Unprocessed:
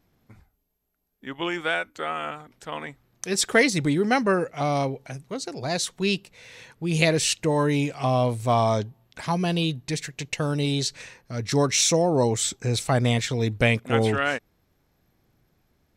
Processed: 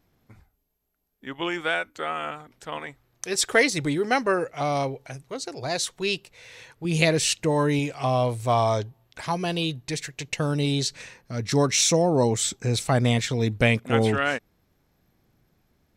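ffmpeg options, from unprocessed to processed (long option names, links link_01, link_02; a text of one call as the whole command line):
ffmpeg -i in.wav -af "asetnsamples=nb_out_samples=441:pad=0,asendcmd='2.78 equalizer g -9.5;6.85 equalizer g -0.5;7.79 equalizer g -7.5;10.28 equalizer g 2',equalizer=frequency=200:width_type=o:width=0.67:gain=-2" out.wav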